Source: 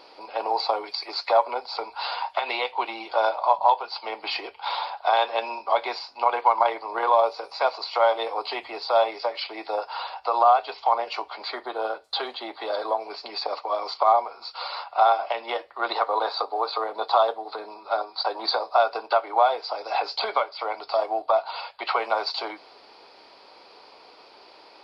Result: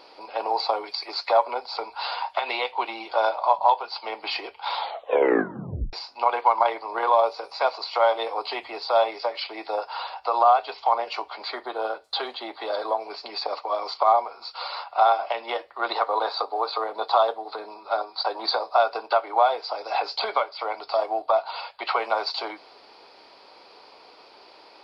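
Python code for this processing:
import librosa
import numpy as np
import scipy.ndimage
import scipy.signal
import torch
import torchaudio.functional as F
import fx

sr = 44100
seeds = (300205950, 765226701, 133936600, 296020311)

y = fx.edit(x, sr, fx.tape_stop(start_s=4.77, length_s=1.16), tone=tone)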